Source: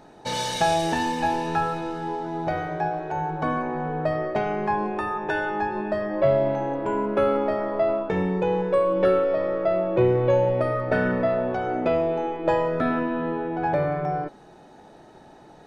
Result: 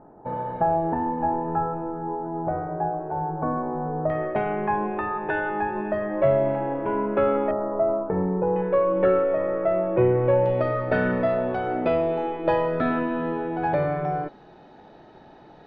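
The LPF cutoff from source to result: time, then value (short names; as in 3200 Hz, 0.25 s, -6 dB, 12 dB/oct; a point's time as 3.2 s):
LPF 24 dB/oct
1200 Hz
from 4.1 s 2700 Hz
from 7.51 s 1300 Hz
from 8.56 s 2400 Hz
from 10.46 s 4400 Hz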